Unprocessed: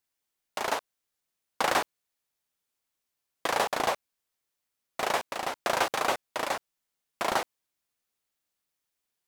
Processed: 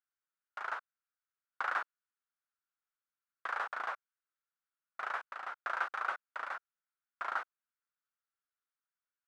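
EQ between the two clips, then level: band-pass 1400 Hz, Q 4.6; 0.0 dB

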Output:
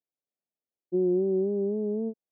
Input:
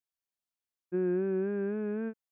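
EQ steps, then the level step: HPF 190 Hz; inverse Chebyshev low-pass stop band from 1400 Hz, stop band 40 dB; +5.5 dB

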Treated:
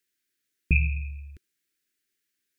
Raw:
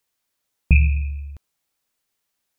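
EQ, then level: EQ curve 140 Hz 0 dB, 370 Hz +10 dB, 840 Hz -25 dB, 1600 Hz +9 dB, 3200 Hz +5 dB; -8.5 dB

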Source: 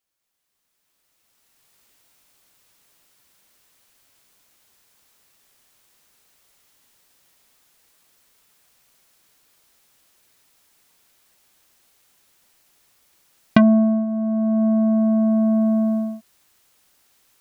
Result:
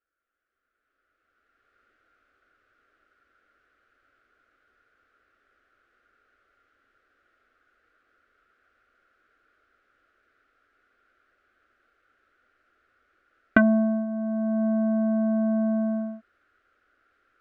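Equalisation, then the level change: synth low-pass 1400 Hz, resonance Q 8; fixed phaser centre 390 Hz, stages 4; 0.0 dB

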